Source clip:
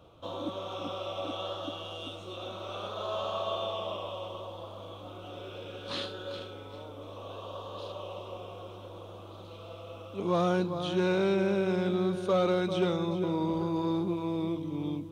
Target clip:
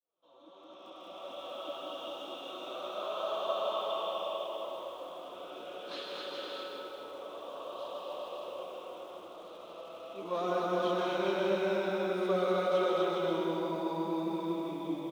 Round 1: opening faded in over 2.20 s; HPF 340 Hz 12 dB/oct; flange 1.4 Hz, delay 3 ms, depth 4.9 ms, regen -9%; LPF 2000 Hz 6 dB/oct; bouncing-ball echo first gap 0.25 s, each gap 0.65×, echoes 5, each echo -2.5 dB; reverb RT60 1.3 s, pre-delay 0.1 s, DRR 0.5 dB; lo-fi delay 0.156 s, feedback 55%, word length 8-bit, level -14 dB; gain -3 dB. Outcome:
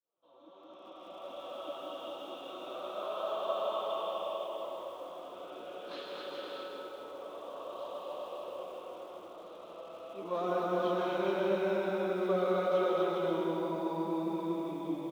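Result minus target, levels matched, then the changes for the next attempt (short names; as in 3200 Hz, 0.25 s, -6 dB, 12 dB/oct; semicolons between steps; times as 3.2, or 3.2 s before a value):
8000 Hz band -3.5 dB
change: LPF 6200 Hz 6 dB/oct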